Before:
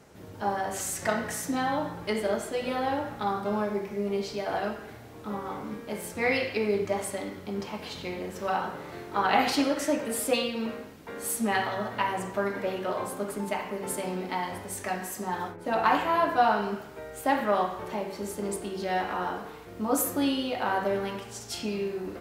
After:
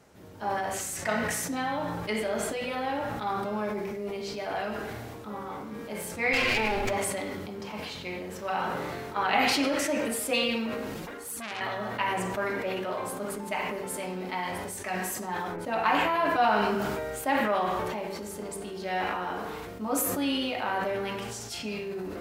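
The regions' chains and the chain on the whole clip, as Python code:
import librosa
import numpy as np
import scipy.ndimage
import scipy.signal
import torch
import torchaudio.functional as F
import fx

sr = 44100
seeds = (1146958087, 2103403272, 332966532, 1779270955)

y = fx.chain(x, sr, fx.lower_of_two(delay_ms=8.3),
    fx.env_flatten(amount_pct=100), at=(6.33, 6.93))
y = fx.chain(y, sr, fx.env_flanger(rest_ms=6.8, full_db=-24.5),
    fx.transformer_sat(knee_hz=3100.0), at=(10.94, 11.61))
y = fx.hum_notches(y, sr, base_hz=50, count=10)
y = fx.dynamic_eq(y, sr, hz=2400.0, q=2.2, threshold_db=-47.0, ratio=4.0, max_db=6)
y = fx.sustainer(y, sr, db_per_s=20.0)
y = y * librosa.db_to_amplitude(-3.0)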